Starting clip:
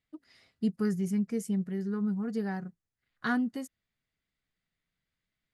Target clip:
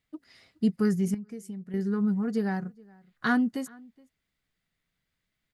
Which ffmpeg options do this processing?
ffmpeg -i in.wav -filter_complex "[0:a]asplit=2[link_01][link_02];[link_02]adelay=419.8,volume=-25dB,highshelf=frequency=4000:gain=-9.45[link_03];[link_01][link_03]amix=inputs=2:normalize=0,asettb=1/sr,asplit=3[link_04][link_05][link_06];[link_04]atrim=end=1.144[link_07];[link_05]atrim=start=1.14:end=1.74,asetpts=PTS-STARTPTS,afade=type=in:duration=0.004:curve=qsin,afade=type=out:start_time=0.596:duration=0.004:curve=qsin,acompressor=threshold=-40dB:ratio=16[link_08];[link_06]atrim=start=1.736[link_09];[link_07][link_08]acrossfade=duration=0.004:curve1=hsin:curve2=qsin[link_10];[link_10][link_09]acrossfade=duration=0.004:curve1=qsin:curve2=hsin,volume=4.5dB" out.wav

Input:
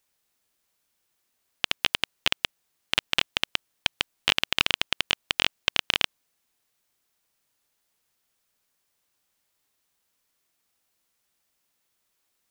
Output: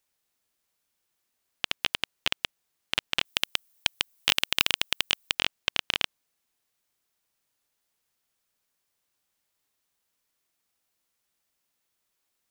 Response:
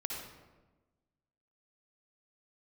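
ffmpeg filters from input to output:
-filter_complex "[0:a]asettb=1/sr,asplit=3[link_01][link_02][link_03];[link_01]atrim=end=3.254[link_04];[link_02]atrim=start=3.25:end=5.35,asetpts=PTS-STARTPTS,afade=type=in:duration=0.004:curve=qsin,afade=type=out:start_time=2.096:duration=0.004:curve=qsin,aemphasis=mode=production:type=50kf[link_05];[link_03]atrim=start=5.346[link_06];[link_04][link_05]acrossfade=duration=0.004:curve1=hsin:curve2=qsin[link_07];[link_07][link_06]acrossfade=duration=0.004:curve1=qsin:curve2=hsin,volume=-3.5dB"

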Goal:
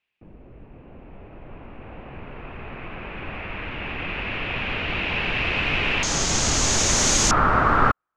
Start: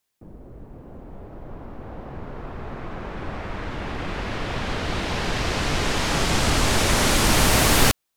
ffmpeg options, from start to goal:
ffmpeg -i in.wav -af "asetnsamples=nb_out_samples=441:pad=0,asendcmd='6.03 lowpass f 6600;7.31 lowpass f 1300',lowpass=frequency=2600:width_type=q:width=5.6,volume=-3.5dB" out.wav

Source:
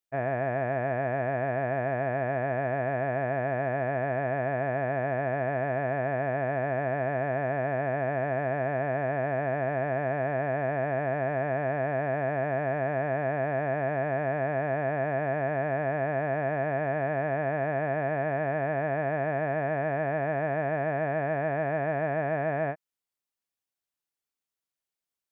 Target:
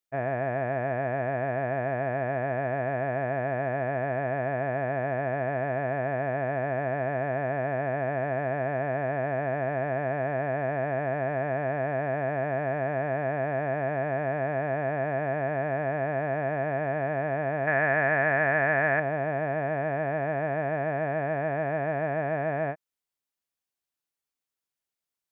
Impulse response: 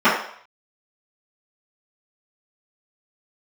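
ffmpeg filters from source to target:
-filter_complex "[0:a]asettb=1/sr,asplit=3[link_01][link_02][link_03];[link_01]atrim=end=17.674[link_04];[link_02]atrim=start=17.67:end=19,asetpts=PTS-STARTPTS,afade=type=in:duration=0.004:curve=qsin,afade=type=out:start_time=1.326:duration=0.004:curve=qsin,equalizer=frequency=1800:width_type=o:width=1.5:gain=12.5[link_05];[link_03]atrim=start=18.996[link_06];[link_04][link_05]acrossfade=duration=0.004:curve1=hsin:curve2=qsin[link_07];[link_07][link_06]acrossfade=duration=0.004:curve1=qsin:curve2=hsin"

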